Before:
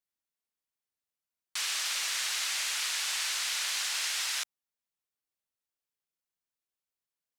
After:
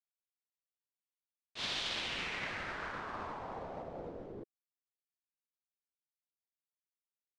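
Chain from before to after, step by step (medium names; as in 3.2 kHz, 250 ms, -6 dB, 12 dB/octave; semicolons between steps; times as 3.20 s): ring modulator 1.9 kHz; expander -22 dBFS; low-pass sweep 3.5 kHz -> 300 Hz, 1.87–4.76 s; trim +15.5 dB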